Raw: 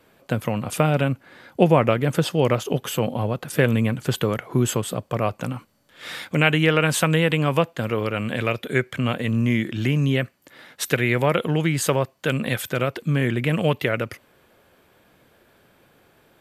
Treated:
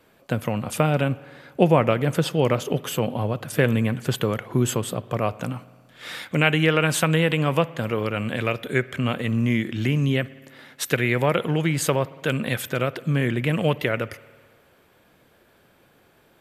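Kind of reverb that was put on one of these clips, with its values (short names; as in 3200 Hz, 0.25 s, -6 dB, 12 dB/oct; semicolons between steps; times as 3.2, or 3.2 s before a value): spring tank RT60 1.7 s, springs 56 ms, chirp 60 ms, DRR 18.5 dB; gain -1 dB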